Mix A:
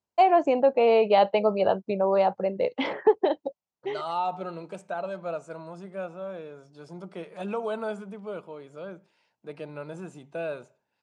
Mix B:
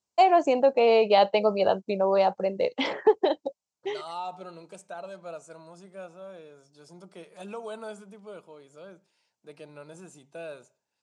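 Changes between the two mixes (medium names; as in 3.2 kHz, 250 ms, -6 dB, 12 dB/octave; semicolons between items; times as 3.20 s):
second voice -7.0 dB; master: add tone controls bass -2 dB, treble +13 dB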